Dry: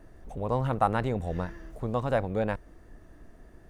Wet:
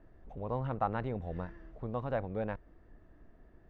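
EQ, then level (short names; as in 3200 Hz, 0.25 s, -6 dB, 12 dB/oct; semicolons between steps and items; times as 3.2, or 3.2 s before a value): Bessel low-pass 3300 Hz, order 2; air absorption 96 m; -7.0 dB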